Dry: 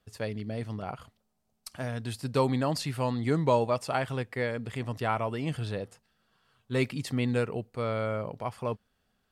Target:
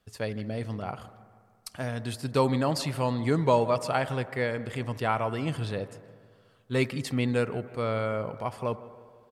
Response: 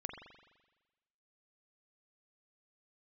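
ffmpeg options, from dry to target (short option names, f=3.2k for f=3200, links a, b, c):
-filter_complex "[0:a]asplit=2[a][b];[b]adelay=160,lowpass=f=2.8k:p=1,volume=-20dB,asplit=2[c][d];[d]adelay=160,lowpass=f=2.8k:p=1,volume=0.53,asplit=2[e][f];[f]adelay=160,lowpass=f=2.8k:p=1,volume=0.53,asplit=2[g][h];[h]adelay=160,lowpass=f=2.8k:p=1,volume=0.53[i];[a][c][e][g][i]amix=inputs=5:normalize=0,asplit=2[j][k];[1:a]atrim=start_sample=2205,asetrate=26019,aresample=44100,lowshelf=f=220:g=-7[l];[k][l]afir=irnorm=-1:irlink=0,volume=-10.5dB[m];[j][m]amix=inputs=2:normalize=0"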